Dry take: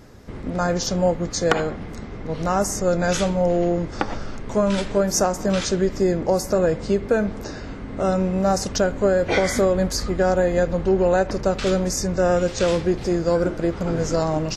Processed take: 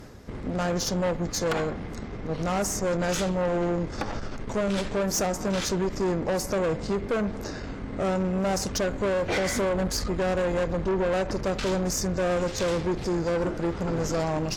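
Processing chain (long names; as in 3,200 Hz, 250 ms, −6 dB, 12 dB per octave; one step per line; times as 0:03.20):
reversed playback
upward compression, threshold −35 dBFS
reversed playback
tube saturation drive 22 dB, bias 0.45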